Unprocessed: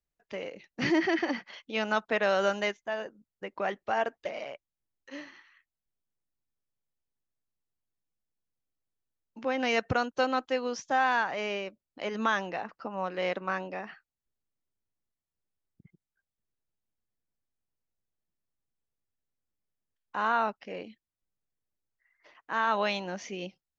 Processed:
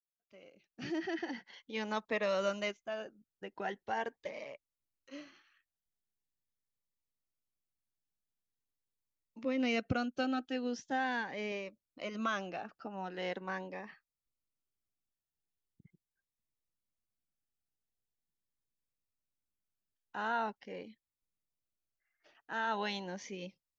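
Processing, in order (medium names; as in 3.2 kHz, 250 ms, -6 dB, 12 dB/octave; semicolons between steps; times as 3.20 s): fade-in on the opening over 1.97 s; 9.43–11.52 s: fifteen-band graphic EQ 250 Hz +6 dB, 1 kHz -7 dB, 6.3 kHz -4 dB; Shepard-style phaser rising 0.42 Hz; trim -4.5 dB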